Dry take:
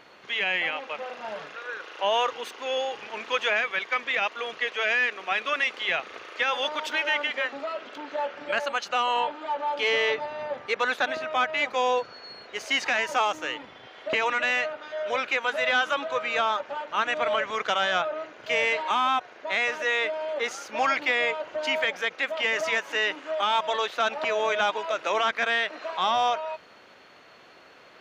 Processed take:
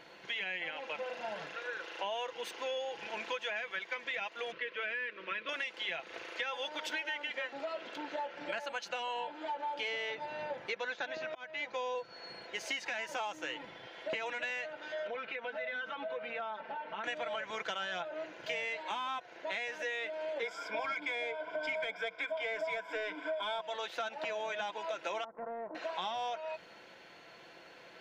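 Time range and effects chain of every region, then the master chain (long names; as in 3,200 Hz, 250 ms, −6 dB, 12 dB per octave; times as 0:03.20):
0:04.52–0:05.49: Butterworth band-reject 770 Hz, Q 2.3 + high-frequency loss of the air 280 metres
0:10.69–0:11.95: Butterworth low-pass 7,000 Hz 72 dB per octave + volume swells 671 ms
0:15.07–0:17.04: comb filter 4.5 ms, depth 84% + downward compressor 3 to 1, threshold −33 dBFS + high-frequency loss of the air 300 metres
0:20.42–0:23.61: EQ curve with evenly spaced ripples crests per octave 1.7, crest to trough 17 dB + mid-hump overdrive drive 10 dB, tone 1,500 Hz, clips at −8.5 dBFS
0:25.24–0:25.75: Chebyshev low-pass filter 1,100 Hz, order 4 + downward compressor 4 to 1, threshold −35 dBFS + highs frequency-modulated by the lows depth 0.16 ms
whole clip: notch filter 1,200 Hz, Q 6.4; comb filter 5.9 ms, depth 42%; downward compressor 6 to 1, threshold −32 dBFS; level −3 dB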